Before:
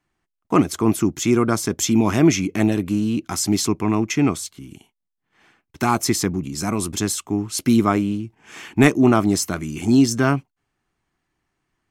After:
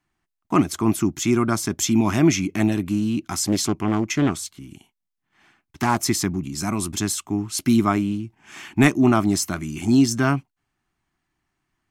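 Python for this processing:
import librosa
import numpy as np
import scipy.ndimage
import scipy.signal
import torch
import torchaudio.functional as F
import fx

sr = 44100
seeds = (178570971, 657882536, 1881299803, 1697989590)

y = fx.peak_eq(x, sr, hz=480.0, db=-13.5, octaves=0.29)
y = fx.doppler_dist(y, sr, depth_ms=0.35, at=(3.37, 6.02))
y = y * librosa.db_to_amplitude(-1.0)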